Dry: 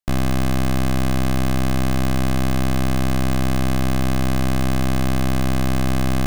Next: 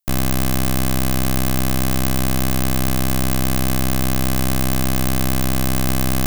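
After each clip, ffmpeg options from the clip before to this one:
ffmpeg -i in.wav -af "aemphasis=mode=production:type=50kf" out.wav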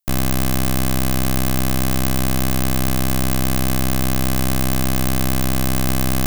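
ffmpeg -i in.wav -af anull out.wav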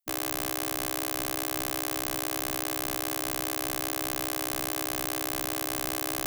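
ffmpeg -i in.wav -af "afftfilt=real='re*lt(hypot(re,im),0.316)':imag='im*lt(hypot(re,im),0.316)':win_size=1024:overlap=0.75,volume=-6.5dB" out.wav

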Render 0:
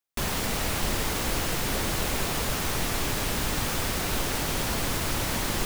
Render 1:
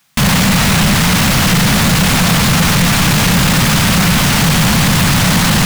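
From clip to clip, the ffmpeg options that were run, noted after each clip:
ffmpeg -i in.wav -filter_complex "[0:a]alimiter=limit=-20.5dB:level=0:latency=1,lowshelf=frequency=260:width_type=q:width=3:gain=13.5,asplit=2[link_01][link_02];[link_02]highpass=frequency=720:poles=1,volume=38dB,asoftclip=type=tanh:threshold=-7dB[link_03];[link_01][link_03]amix=inputs=2:normalize=0,lowpass=frequency=5200:poles=1,volume=-6dB,volume=3.5dB" out.wav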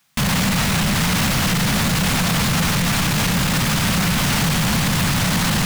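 ffmpeg -i in.wav -af "alimiter=limit=-7dB:level=0:latency=1,volume=-6dB" out.wav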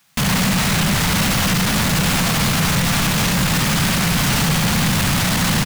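ffmpeg -i in.wav -filter_complex "[0:a]aecho=1:1:71:0.531,asplit=2[link_01][link_02];[link_02]aeval=exprs='0.0794*(abs(mod(val(0)/0.0794+3,4)-2)-1)':channel_layout=same,volume=-4.5dB[link_03];[link_01][link_03]amix=inputs=2:normalize=0" out.wav

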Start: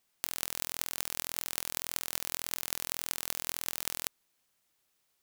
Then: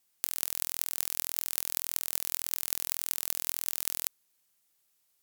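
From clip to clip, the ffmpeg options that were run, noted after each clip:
ffmpeg -i in.wav -af "aemphasis=mode=production:type=cd,volume=-4dB" out.wav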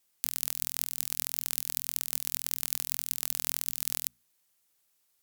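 ffmpeg -i in.wav -af "bandreject=frequency=60:width_type=h:width=6,bandreject=frequency=120:width_type=h:width=6,bandreject=frequency=180:width_type=h:width=6,bandreject=frequency=240:width_type=h:width=6,acrusher=bits=2:mode=log:mix=0:aa=0.000001" out.wav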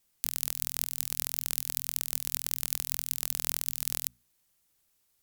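ffmpeg -i in.wav -af "lowshelf=frequency=210:gain=11.5" out.wav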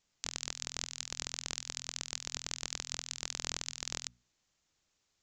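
ffmpeg -i in.wav -af "aresample=16000,aresample=44100" out.wav

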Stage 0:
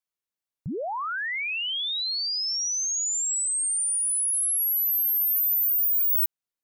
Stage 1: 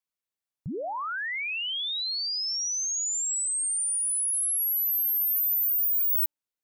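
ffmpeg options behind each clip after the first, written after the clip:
ffmpeg -i in.wav -af "bandreject=frequency=294.7:width_type=h:width=4,bandreject=frequency=589.4:width_type=h:width=4,bandreject=frequency=884.1:width_type=h:width=4,volume=-2dB" out.wav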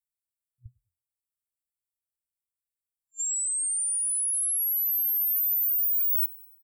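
ffmpeg -i in.wav -filter_complex "[0:a]asplit=5[link_01][link_02][link_03][link_04][link_05];[link_02]adelay=97,afreqshift=42,volume=-20dB[link_06];[link_03]adelay=194,afreqshift=84,volume=-25.4dB[link_07];[link_04]adelay=291,afreqshift=126,volume=-30.7dB[link_08];[link_05]adelay=388,afreqshift=168,volume=-36.1dB[link_09];[link_01][link_06][link_07][link_08][link_09]amix=inputs=5:normalize=0,afftfilt=real='re*(1-between(b*sr/4096,120,7300))':imag='im*(1-between(b*sr/4096,120,7300))':win_size=4096:overlap=0.75" out.wav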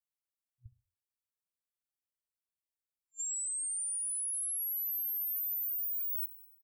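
ffmpeg -i in.wav -af "acompressor=threshold=-27dB:ratio=6,aecho=1:1:66|132|198:0.0944|0.034|0.0122,volume=-6.5dB" out.wav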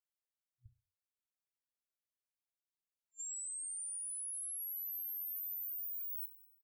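ffmpeg -i in.wav -filter_complex "[0:a]asplit=2[link_01][link_02];[link_02]adelay=31,volume=-13dB[link_03];[link_01][link_03]amix=inputs=2:normalize=0,volume=-7dB" out.wav

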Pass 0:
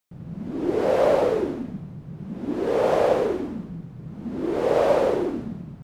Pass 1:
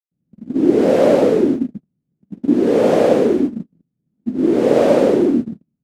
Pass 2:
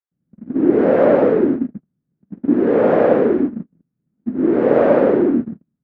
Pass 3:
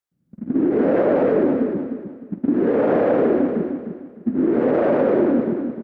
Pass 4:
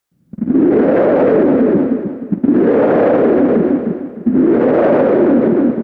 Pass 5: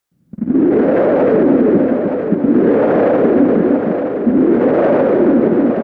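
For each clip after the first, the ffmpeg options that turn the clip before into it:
ffmpeg -i in.wav -filter_complex "[0:a]agate=range=-45dB:threshold=-29dB:ratio=16:detection=peak,equalizer=frequency=250:width_type=o:width=1:gain=11,equalizer=frequency=1000:width_type=o:width=1:gain=-6,equalizer=frequency=8000:width_type=o:width=1:gain=3,acrossover=split=100|500|1500[link_01][link_02][link_03][link_04];[link_01]acompressor=threshold=-55dB:ratio=6[link_05];[link_05][link_02][link_03][link_04]amix=inputs=4:normalize=0,volume=5.5dB" out.wav
ffmpeg -i in.wav -af "lowpass=frequency=1600:width_type=q:width=1.7,volume=-1dB" out.wav
ffmpeg -i in.wav -filter_complex "[0:a]alimiter=limit=-8dB:level=0:latency=1:release=21,acompressor=threshold=-23dB:ratio=2.5,asplit=2[link_01][link_02];[link_02]aecho=0:1:303|606|909|1212:0.473|0.137|0.0398|0.0115[link_03];[link_01][link_03]amix=inputs=2:normalize=0,volume=4.5dB" out.wav
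ffmpeg -i in.wav -af "alimiter=level_in=15.5dB:limit=-1dB:release=50:level=0:latency=1,volume=-3dB" out.wav
ffmpeg -i in.wav -af "aecho=1:1:919:0.447,volume=-1dB" out.wav

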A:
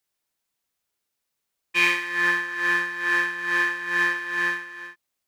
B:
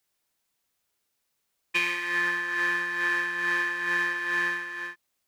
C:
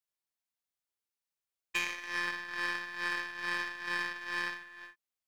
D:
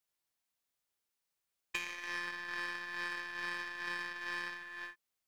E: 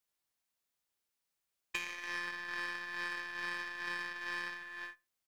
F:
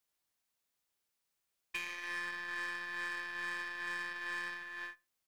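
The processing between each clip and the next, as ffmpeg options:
ffmpeg -i in.wav -af "acompressor=threshold=-26dB:ratio=12,volume=3dB" out.wav
ffmpeg -i in.wav -af "aeval=exprs='0.282*(cos(1*acos(clip(val(0)/0.282,-1,1)))-cos(1*PI/2))+0.0224*(cos(2*acos(clip(val(0)/0.282,-1,1)))-cos(2*PI/2))+0.0251*(cos(5*acos(clip(val(0)/0.282,-1,1)))-cos(5*PI/2))+0.0447*(cos(7*acos(clip(val(0)/0.282,-1,1)))-cos(7*PI/2))+0.00794*(cos(8*acos(clip(val(0)/0.282,-1,1)))-cos(8*PI/2))':channel_layout=same,equalizer=frequency=280:width_type=o:width=1.7:gain=-3.5,volume=-6.5dB" out.wav
ffmpeg -i in.wav -af "acompressor=threshold=-41dB:ratio=5,volume=4.5dB" out.wav
ffmpeg -i in.wav -filter_complex "[0:a]asplit=2[link_01][link_02];[link_02]adelay=67,lowpass=frequency=2100:poles=1,volume=-23.5dB,asplit=2[link_03][link_04];[link_04]adelay=67,lowpass=frequency=2100:poles=1,volume=0.29[link_05];[link_01][link_03][link_05]amix=inputs=3:normalize=0" out.wav
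ffmpeg -i in.wav -af "asoftclip=type=tanh:threshold=-30.5dB,volume=1.5dB" out.wav

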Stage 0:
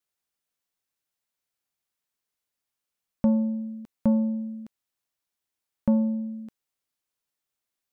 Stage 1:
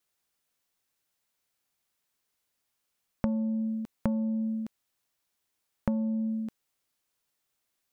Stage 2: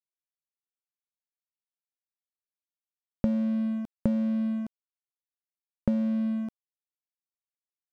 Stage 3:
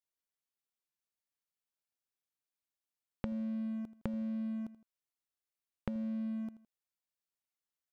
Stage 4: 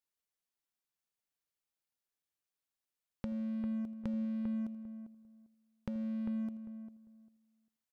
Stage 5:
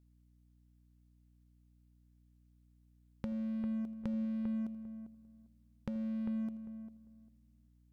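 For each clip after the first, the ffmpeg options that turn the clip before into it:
ffmpeg -i in.wav -af "acompressor=threshold=-32dB:ratio=8,volume=5.5dB" out.wav
ffmpeg -i in.wav -af "lowshelf=frequency=640:width_type=q:width=1.5:gain=8,aeval=exprs='sgn(val(0))*max(abs(val(0))-0.0133,0)':channel_layout=same,volume=-5dB" out.wav
ffmpeg -i in.wav -af "aecho=1:1:81|162:0.106|0.0307,acompressor=threshold=-39dB:ratio=3" out.wav
ffmpeg -i in.wav -filter_complex "[0:a]asplit=2[link_01][link_02];[link_02]adelay=398,lowpass=frequency=1300:poles=1,volume=-10dB,asplit=2[link_03][link_04];[link_04]adelay=398,lowpass=frequency=1300:poles=1,volume=0.2,asplit=2[link_05][link_06];[link_06]adelay=398,lowpass=frequency=1300:poles=1,volume=0.2[link_07];[link_01][link_03][link_05][link_07]amix=inputs=4:normalize=0,asoftclip=type=tanh:threshold=-25.5dB" out.wav
ffmpeg -i in.wav -af "aeval=exprs='val(0)+0.000562*(sin(2*PI*60*n/s)+sin(2*PI*2*60*n/s)/2+sin(2*PI*3*60*n/s)/3+sin(2*PI*4*60*n/s)/4+sin(2*PI*5*60*n/s)/5)':channel_layout=same" out.wav

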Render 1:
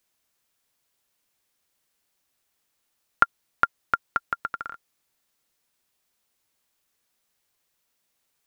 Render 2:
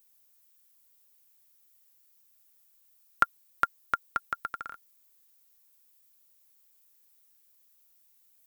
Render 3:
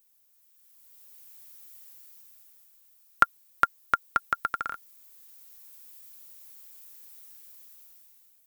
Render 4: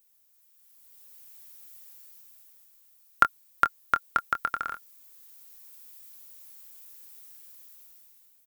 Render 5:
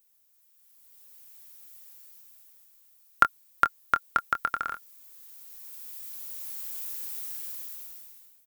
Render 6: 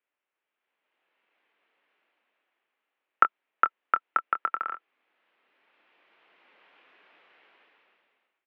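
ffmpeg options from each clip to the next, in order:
ffmpeg -i in.wav -af "aemphasis=mode=production:type=50fm,volume=-5dB" out.wav
ffmpeg -i in.wav -af "dynaudnorm=framelen=270:gausssize=7:maxgain=15.5dB,volume=-1dB" out.wav
ffmpeg -i in.wav -filter_complex "[0:a]asplit=2[link_01][link_02];[link_02]adelay=25,volume=-11dB[link_03];[link_01][link_03]amix=inputs=2:normalize=0" out.wav
ffmpeg -i in.wav -af "dynaudnorm=framelen=680:gausssize=5:maxgain=16dB,volume=-1dB" out.wav
ffmpeg -i in.wav -af "highpass=frequency=360:width_type=q:width=0.5412,highpass=frequency=360:width_type=q:width=1.307,lowpass=frequency=2800:width_type=q:width=0.5176,lowpass=frequency=2800:width_type=q:width=0.7071,lowpass=frequency=2800:width_type=q:width=1.932,afreqshift=-59" out.wav

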